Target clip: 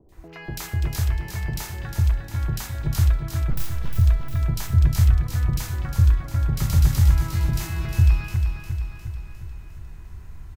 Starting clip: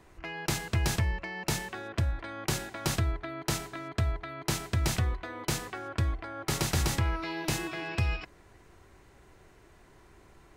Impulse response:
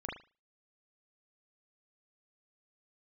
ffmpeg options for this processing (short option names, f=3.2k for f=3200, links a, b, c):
-filter_complex "[0:a]acrossover=split=620|2700[a][b][c];[c]adelay=90[d];[b]adelay=120[e];[a][e][d]amix=inputs=3:normalize=0,asplit=2[f][g];[g]acompressor=threshold=-41dB:ratio=6,volume=1dB[h];[f][h]amix=inputs=2:normalize=0,asettb=1/sr,asplit=3[i][j][k];[i]atrim=end=3.504[l];[j]atrim=start=3.5:end=3.97,asetpts=PTS-STARTPTS,afade=t=in:d=0.004:c=qsin,afade=t=out:st=0.466:d=0.004:c=qsin,aeval=exprs='abs(val(0))':c=same[m];[k]atrim=start=3.966[n];[l][m]acrossfade=d=0.004:c1=hsin:c2=qsin[o];[o][n]acrossfade=d=0.004:c1=qsin:c2=hsin,aexciter=amount=2.5:drive=4.6:freq=12k,asubboost=boost=9:cutoff=120,asplit=2[p][q];[q]aecho=0:1:355|710|1065|1420|1775|2130|2485:0.473|0.26|0.143|0.0787|0.0433|0.0238|0.0131[r];[p][r]amix=inputs=2:normalize=0,volume=-3.5dB"